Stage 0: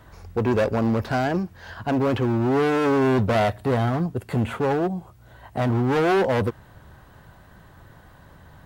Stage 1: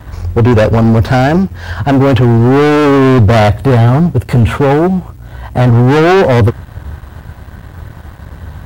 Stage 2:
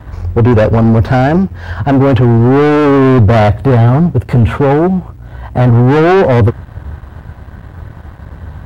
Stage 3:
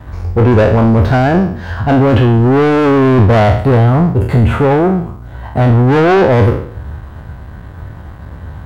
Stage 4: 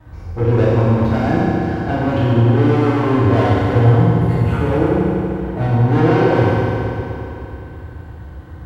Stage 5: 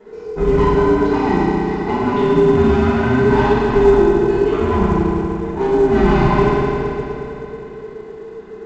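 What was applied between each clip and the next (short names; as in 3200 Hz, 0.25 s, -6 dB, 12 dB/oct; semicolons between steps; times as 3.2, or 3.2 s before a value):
bell 70 Hz +12.5 dB 1.6 oct; sample leveller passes 2; gain +6.5 dB
high shelf 3400 Hz -10.5 dB
spectral trails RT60 0.59 s; gain -2 dB
reverb RT60 3.1 s, pre-delay 3 ms, DRR -7.5 dB; gain -14 dB
band inversion scrambler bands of 500 Hz; µ-law 128 kbps 16000 Hz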